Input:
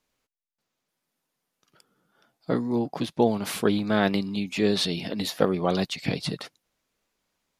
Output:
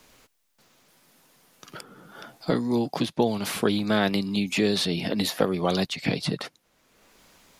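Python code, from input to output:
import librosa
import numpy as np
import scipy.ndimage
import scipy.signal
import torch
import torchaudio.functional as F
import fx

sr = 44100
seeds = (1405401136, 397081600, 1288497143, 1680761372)

y = fx.high_shelf(x, sr, hz=4700.0, db=9.0, at=(3.62, 5.84))
y = fx.band_squash(y, sr, depth_pct=70)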